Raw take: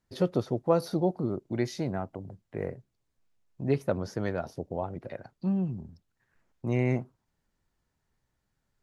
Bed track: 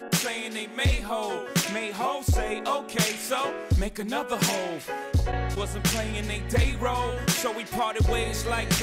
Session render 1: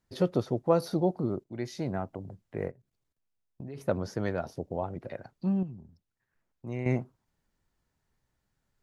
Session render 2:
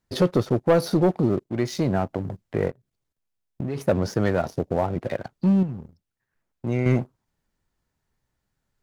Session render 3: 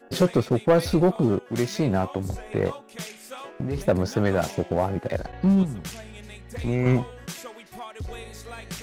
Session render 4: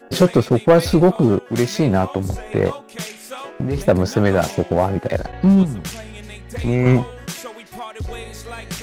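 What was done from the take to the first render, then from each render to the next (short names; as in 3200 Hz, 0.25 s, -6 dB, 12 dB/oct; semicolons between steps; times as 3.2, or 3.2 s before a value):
1.44–1.95 fade in, from -12.5 dB; 2.68–3.78 level quantiser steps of 20 dB; 5.63–6.86 gain -8 dB
in parallel at -2.5 dB: compressor, threshold -34 dBFS, peak gain reduction 15 dB; on the sum: sample leveller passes 2
add bed track -12 dB
gain +6.5 dB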